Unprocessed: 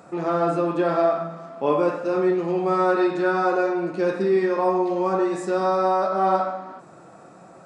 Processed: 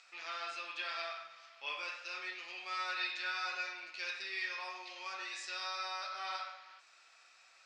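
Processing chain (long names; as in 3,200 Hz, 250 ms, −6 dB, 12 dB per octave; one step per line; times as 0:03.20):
Chebyshev band-pass filter 2,400–5,300 Hz, order 2
level +3.5 dB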